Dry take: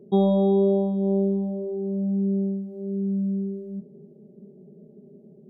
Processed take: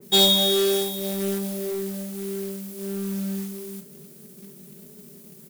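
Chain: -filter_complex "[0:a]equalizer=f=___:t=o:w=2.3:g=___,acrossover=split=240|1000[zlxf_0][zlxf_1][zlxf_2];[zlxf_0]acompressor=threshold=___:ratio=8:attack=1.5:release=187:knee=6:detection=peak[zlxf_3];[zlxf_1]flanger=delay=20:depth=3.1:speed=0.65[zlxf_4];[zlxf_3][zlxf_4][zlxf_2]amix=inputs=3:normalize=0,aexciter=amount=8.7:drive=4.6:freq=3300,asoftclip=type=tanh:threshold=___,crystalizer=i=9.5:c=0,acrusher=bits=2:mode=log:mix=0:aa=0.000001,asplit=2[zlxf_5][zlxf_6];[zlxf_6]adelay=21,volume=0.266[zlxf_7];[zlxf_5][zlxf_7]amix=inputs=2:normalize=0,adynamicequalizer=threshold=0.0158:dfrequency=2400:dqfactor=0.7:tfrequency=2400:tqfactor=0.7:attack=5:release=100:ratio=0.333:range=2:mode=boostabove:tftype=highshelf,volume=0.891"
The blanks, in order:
130, 2.5, 0.0112, 0.15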